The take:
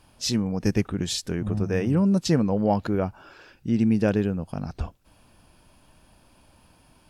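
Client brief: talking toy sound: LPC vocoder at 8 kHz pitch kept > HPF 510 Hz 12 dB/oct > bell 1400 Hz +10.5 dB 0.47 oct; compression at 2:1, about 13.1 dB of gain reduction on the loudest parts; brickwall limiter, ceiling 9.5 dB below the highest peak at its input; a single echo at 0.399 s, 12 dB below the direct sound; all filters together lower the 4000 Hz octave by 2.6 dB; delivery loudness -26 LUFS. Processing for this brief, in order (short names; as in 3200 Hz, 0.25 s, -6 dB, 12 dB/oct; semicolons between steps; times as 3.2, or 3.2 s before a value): bell 4000 Hz -3.5 dB; compressor 2:1, threshold -42 dBFS; limiter -32 dBFS; echo 0.399 s -12 dB; LPC vocoder at 8 kHz pitch kept; HPF 510 Hz 12 dB/oct; bell 1400 Hz +10.5 dB 0.47 oct; gain +25.5 dB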